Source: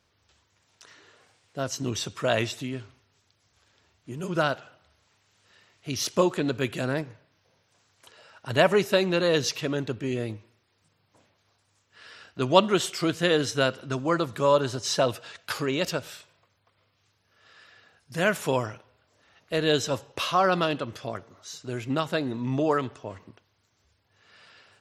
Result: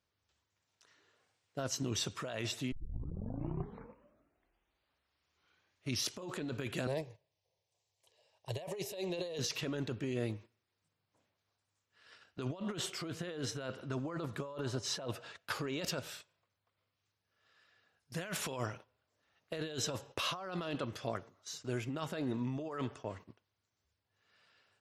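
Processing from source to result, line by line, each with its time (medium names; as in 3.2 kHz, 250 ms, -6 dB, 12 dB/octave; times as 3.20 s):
2.72 s: tape start 3.39 s
6.87–9.39 s: static phaser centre 580 Hz, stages 4
12.48–15.67 s: treble shelf 2.5 kHz -6 dB
18.21–18.61 s: peaking EQ 3.5 kHz +5 dB 2.2 oct
21.57–23.08 s: band-stop 4 kHz
whole clip: gate -46 dBFS, range -11 dB; compressor with a negative ratio -30 dBFS, ratio -1; trim -8.5 dB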